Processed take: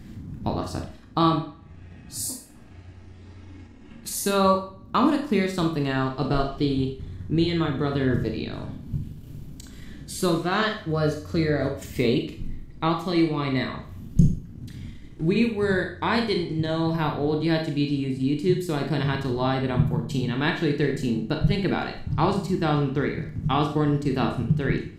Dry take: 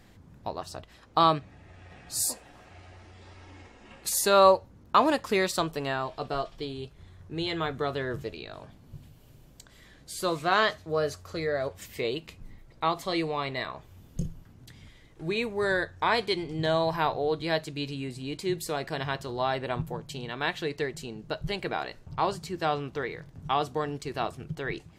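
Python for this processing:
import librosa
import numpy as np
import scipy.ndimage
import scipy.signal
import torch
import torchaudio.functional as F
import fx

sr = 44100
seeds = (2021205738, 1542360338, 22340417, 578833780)

y = fx.low_shelf_res(x, sr, hz=380.0, db=10.0, q=1.5)
y = fx.rider(y, sr, range_db=4, speed_s=0.5)
y = fx.transient(y, sr, attack_db=1, sustain_db=-6)
y = fx.echo_wet_lowpass(y, sr, ms=78, feedback_pct=52, hz=3700.0, wet_db=-22.0)
y = fx.rev_schroeder(y, sr, rt60_s=0.42, comb_ms=27, drr_db=3.0)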